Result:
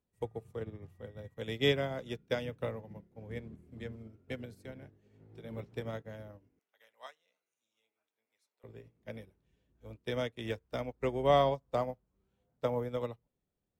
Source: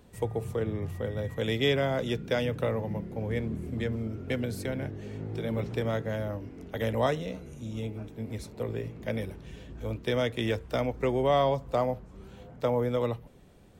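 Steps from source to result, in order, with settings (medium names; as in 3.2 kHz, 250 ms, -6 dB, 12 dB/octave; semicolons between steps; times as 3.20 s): 6.59–8.64 s: high-pass 1.1 kHz 12 dB/octave; upward expansion 2.5:1, over -42 dBFS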